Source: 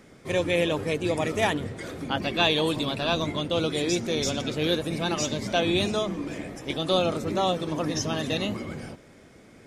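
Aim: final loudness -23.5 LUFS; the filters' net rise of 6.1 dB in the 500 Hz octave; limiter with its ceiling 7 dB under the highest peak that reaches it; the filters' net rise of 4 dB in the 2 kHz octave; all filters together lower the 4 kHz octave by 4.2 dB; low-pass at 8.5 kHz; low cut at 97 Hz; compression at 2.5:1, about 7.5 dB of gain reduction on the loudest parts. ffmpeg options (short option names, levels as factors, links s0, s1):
-af "highpass=97,lowpass=8500,equalizer=f=500:t=o:g=7,equalizer=f=2000:t=o:g=7.5,equalizer=f=4000:t=o:g=-8,acompressor=threshold=0.0501:ratio=2.5,volume=2.37,alimiter=limit=0.211:level=0:latency=1"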